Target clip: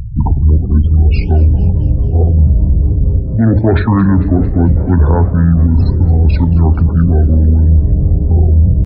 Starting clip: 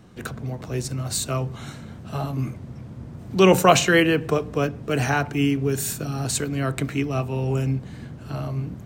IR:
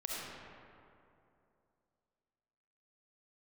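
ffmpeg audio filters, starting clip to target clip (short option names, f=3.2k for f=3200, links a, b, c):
-filter_complex "[0:a]lowpass=f=10k:w=0.5412,lowpass=f=10k:w=1.3066,aemphasis=mode=reproduction:type=riaa,bandreject=f=50:t=h:w=6,bandreject=f=100:t=h:w=6,afftfilt=real='re*gte(hypot(re,im),0.0316)':imag='im*gte(hypot(re,im),0.0316)':win_size=1024:overlap=0.75,highshelf=f=3.3k:g=-3.5,areverse,acompressor=threshold=-22dB:ratio=6,areverse,flanger=delay=4.6:depth=8.6:regen=86:speed=1.3:shape=sinusoidal,asetrate=26222,aresample=44100,atempo=1.68179,asplit=6[a][b][c][d][e][f];[b]adelay=224,afreqshift=110,volume=-20dB[g];[c]adelay=448,afreqshift=220,volume=-24.6dB[h];[d]adelay=672,afreqshift=330,volume=-29.2dB[i];[e]adelay=896,afreqshift=440,volume=-33.7dB[j];[f]adelay=1120,afreqshift=550,volume=-38.3dB[k];[a][g][h][i][j][k]amix=inputs=6:normalize=0,alimiter=level_in=23.5dB:limit=-1dB:release=50:level=0:latency=1,volume=-1dB"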